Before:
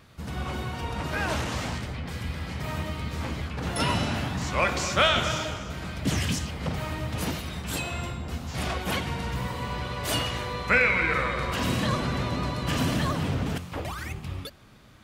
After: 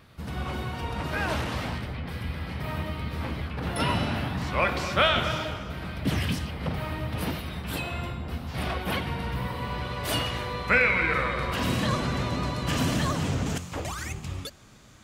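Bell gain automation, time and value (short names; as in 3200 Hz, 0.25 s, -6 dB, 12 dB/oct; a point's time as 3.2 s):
bell 6900 Hz 0.66 oct
1.25 s -5.5 dB
1.75 s -13.5 dB
9.47 s -13.5 dB
9.93 s -5.5 dB
11.49 s -5.5 dB
11.97 s +2 dB
12.8 s +2 dB
13.34 s +10.5 dB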